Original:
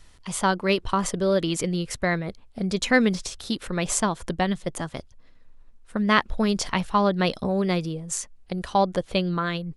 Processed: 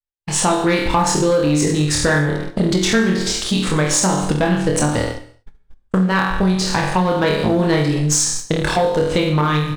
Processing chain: AGC gain up to 12 dB; dynamic EQ 3100 Hz, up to -6 dB, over -38 dBFS, Q 2.9; on a send: flutter echo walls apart 4.1 m, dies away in 0.57 s; on the sum: compressor 5:1, threshold -20 dBFS, peak gain reduction 14 dB; sample leveller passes 2; gate -24 dBFS, range -55 dB; pitch shift -2 st; non-linear reverb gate 0.26 s falling, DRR 10.5 dB

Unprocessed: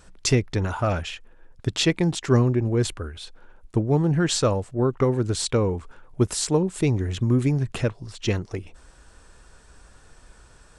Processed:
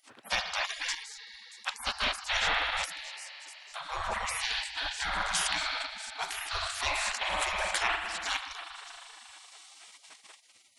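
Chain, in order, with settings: thin delay 0.632 s, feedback 47%, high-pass 3800 Hz, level -18.5 dB; spring tank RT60 3.9 s, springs 39 ms, chirp 30 ms, DRR 1.5 dB; in parallel at +0.5 dB: level quantiser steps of 23 dB; on the sum: spectral gate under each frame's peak -30 dB weak; high shelf 4200 Hz -6.5 dB; gain +7.5 dB

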